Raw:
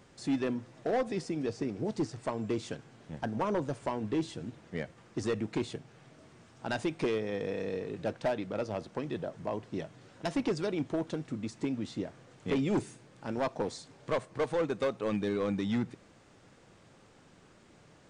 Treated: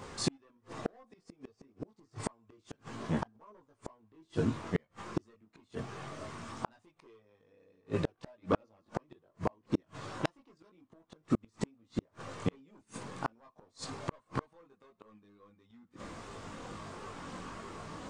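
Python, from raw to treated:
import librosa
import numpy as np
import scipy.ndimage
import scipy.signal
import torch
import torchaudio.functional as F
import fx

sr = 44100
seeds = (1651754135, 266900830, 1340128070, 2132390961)

y = fx.chorus_voices(x, sr, voices=6, hz=0.24, base_ms=20, depth_ms=2.6, mix_pct=50)
y = fx.peak_eq(y, sr, hz=1100.0, db=10.0, octaves=0.42)
y = fx.gate_flip(y, sr, shuts_db=-31.0, range_db=-42)
y = y * librosa.db_to_amplitude(14.5)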